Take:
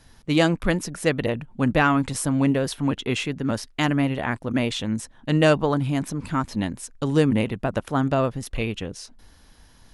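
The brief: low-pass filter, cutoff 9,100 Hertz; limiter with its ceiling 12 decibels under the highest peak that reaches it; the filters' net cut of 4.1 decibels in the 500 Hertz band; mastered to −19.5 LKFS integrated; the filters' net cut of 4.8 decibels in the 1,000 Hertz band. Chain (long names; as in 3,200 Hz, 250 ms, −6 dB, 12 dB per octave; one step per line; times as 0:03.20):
low-pass filter 9,100 Hz
parametric band 500 Hz −3.5 dB
parametric band 1,000 Hz −5.5 dB
level +10 dB
brickwall limiter −8 dBFS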